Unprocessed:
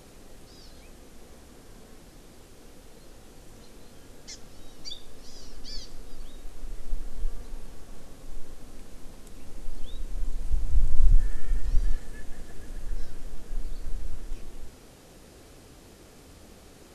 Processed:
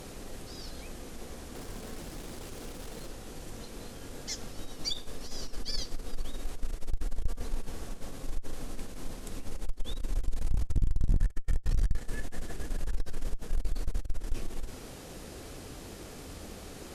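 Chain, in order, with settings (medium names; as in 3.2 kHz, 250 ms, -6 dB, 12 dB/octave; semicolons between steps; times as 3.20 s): 1.55–3.09 s: jump at every zero crossing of -52.5 dBFS; valve stage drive 27 dB, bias 0.4; trim +7.5 dB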